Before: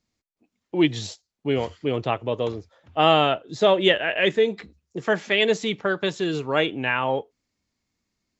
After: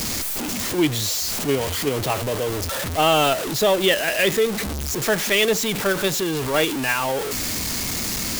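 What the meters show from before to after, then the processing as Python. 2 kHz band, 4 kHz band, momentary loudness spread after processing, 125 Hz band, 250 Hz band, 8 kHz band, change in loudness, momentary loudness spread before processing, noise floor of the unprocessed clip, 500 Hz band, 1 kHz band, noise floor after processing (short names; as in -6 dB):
+2.5 dB, +4.0 dB, 6 LU, +3.5 dB, +1.5 dB, n/a, +2.0 dB, 13 LU, -82 dBFS, +1.0 dB, +1.0 dB, -27 dBFS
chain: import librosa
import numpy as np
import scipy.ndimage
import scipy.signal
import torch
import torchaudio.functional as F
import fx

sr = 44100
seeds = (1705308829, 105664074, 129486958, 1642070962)

p1 = x + 0.5 * 10.0 ** (-20.5 / 20.0) * np.sign(x)
p2 = fx.high_shelf(p1, sr, hz=6300.0, db=9.5)
p3 = fx.level_steps(p2, sr, step_db=9)
p4 = p2 + (p3 * librosa.db_to_amplitude(1.0))
y = p4 * librosa.db_to_amplitude(-7.0)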